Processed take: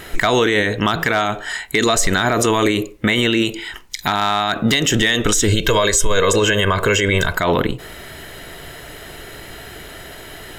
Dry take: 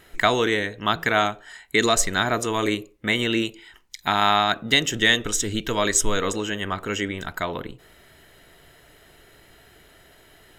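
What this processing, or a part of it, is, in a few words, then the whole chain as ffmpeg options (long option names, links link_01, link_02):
loud club master: -filter_complex "[0:a]asettb=1/sr,asplit=3[link_01][link_02][link_03];[link_01]atrim=end=5.484[link_04];[link_02]atrim=start=5.48:end=7.37,asetpts=PTS-STARTPTS,afade=type=in:duration=0.004:curve=qsin,afade=type=out:start_time=1.886:duration=0.004:curve=qsin,aecho=1:1:1.9:0.66,atrim=end_sample=83349[link_05];[link_03]atrim=start=7.366[link_06];[link_04][link_05]acrossfade=duration=0.004:curve1=hsin:curve2=qsin[link_07];[link_07][link_06]acrossfade=duration=0.004:curve1=qsin:curve2=hsin,acompressor=threshold=-23dB:ratio=2.5,asoftclip=type=hard:threshold=-13.5dB,alimiter=level_in=22.5dB:limit=-1dB:release=50:level=0:latency=1,volume=-5.5dB"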